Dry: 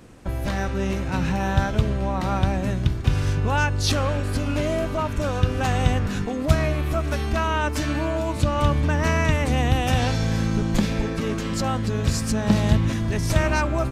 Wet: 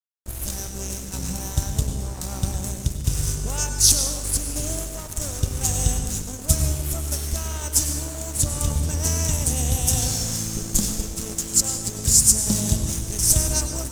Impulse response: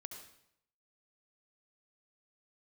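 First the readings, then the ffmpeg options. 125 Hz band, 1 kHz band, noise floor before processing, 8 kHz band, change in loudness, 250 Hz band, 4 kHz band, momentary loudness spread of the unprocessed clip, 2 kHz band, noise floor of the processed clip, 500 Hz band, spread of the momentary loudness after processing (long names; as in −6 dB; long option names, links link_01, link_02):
−4.0 dB, −12.0 dB, −28 dBFS, +17.5 dB, +1.0 dB, −7.0 dB, +3.5 dB, 5 LU, −12.0 dB, −34 dBFS, −9.5 dB, 13 LU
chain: -filter_complex "[0:a]equalizer=frequency=1000:width_type=o:width=1:gain=-4,equalizer=frequency=2000:width_type=o:width=1:gain=-11,equalizer=frequency=4000:width_type=o:width=1:gain=9,equalizer=frequency=8000:width_type=o:width=1:gain=5,aexciter=amount=9.5:drive=6.7:freq=5900,aeval=exprs='sgn(val(0))*max(abs(val(0))-0.0501,0)':channel_layout=same,asplit=2[link_01][link_02];[1:a]atrim=start_sample=2205,asetrate=31752,aresample=44100,lowshelf=frequency=100:gain=12[link_03];[link_02][link_03]afir=irnorm=-1:irlink=0,volume=7.5dB[link_04];[link_01][link_04]amix=inputs=2:normalize=0,volume=-13dB"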